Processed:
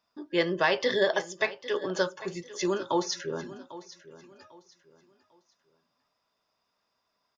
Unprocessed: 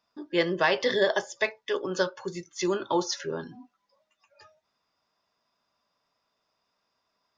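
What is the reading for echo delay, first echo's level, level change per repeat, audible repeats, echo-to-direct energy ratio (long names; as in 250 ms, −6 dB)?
798 ms, −16.5 dB, −10.5 dB, 2, −16.0 dB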